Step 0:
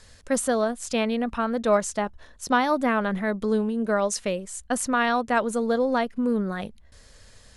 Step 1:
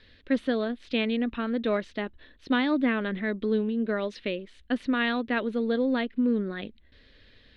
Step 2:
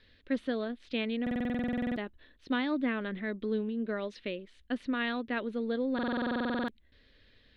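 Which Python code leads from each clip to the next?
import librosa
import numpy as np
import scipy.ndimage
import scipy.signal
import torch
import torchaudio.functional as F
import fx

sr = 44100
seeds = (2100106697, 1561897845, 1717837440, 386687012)

y1 = fx.curve_eq(x, sr, hz=(180.0, 290.0, 810.0, 1300.0, 1800.0, 3800.0, 7200.0), db=(0, 11, -6, -2, 6, 8, -29))
y1 = F.gain(torch.from_numpy(y1), -6.5).numpy()
y2 = fx.buffer_glitch(y1, sr, at_s=(1.22, 5.94), block=2048, repeats=15)
y2 = F.gain(torch.from_numpy(y2), -6.0).numpy()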